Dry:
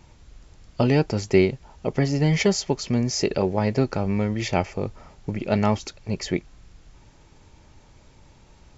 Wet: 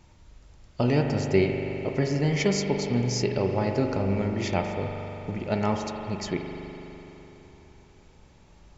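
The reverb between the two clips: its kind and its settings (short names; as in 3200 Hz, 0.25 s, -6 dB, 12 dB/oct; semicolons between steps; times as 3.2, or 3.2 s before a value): spring tank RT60 3.7 s, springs 41 ms, chirp 45 ms, DRR 2.5 dB; gain -4.5 dB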